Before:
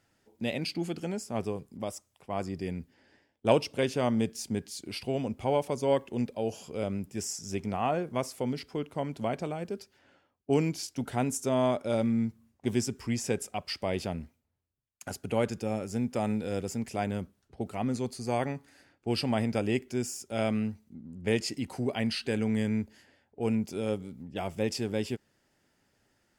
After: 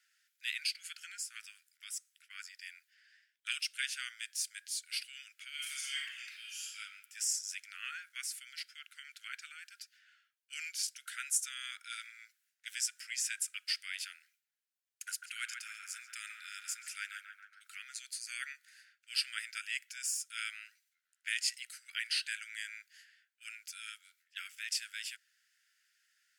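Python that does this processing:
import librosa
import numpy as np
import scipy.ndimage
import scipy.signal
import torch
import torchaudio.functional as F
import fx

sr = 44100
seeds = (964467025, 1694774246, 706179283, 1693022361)

y = fx.reverb_throw(x, sr, start_s=5.54, length_s=1.24, rt60_s=1.1, drr_db=-4.5)
y = fx.echo_banded(y, sr, ms=138, feedback_pct=72, hz=950.0, wet_db=-3.5, at=(15.08, 17.67))
y = scipy.signal.sosfilt(scipy.signal.butter(16, 1400.0, 'highpass', fs=sr, output='sos'), y)
y = fx.dynamic_eq(y, sr, hz=9300.0, q=1.9, threshold_db=-57.0, ratio=4.0, max_db=5)
y = y * 10.0 ** (1.0 / 20.0)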